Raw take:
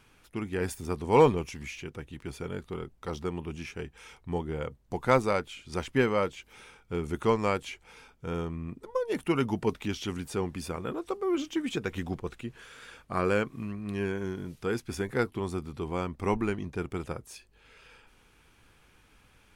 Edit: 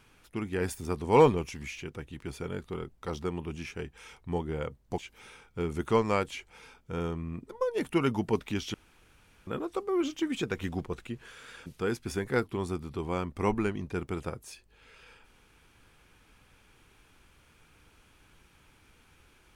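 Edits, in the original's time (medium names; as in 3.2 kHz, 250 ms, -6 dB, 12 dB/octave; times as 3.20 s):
4.98–6.32 s: delete
10.08–10.81 s: room tone
13.00–14.49 s: delete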